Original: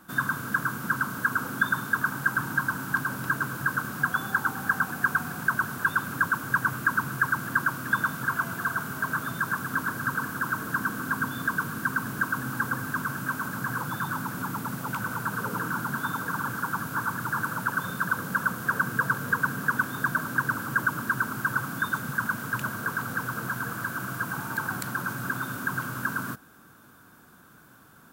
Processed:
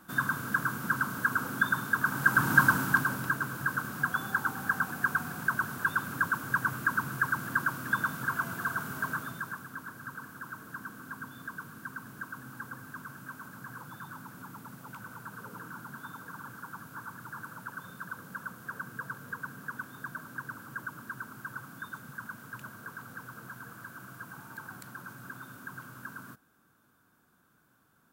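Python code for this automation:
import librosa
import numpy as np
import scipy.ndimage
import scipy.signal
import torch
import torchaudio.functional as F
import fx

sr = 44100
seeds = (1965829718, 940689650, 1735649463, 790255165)

y = fx.gain(x, sr, db=fx.line((1.99, -2.5), (2.62, 6.0), (3.38, -4.0), (9.06, -4.0), (9.73, -14.0)))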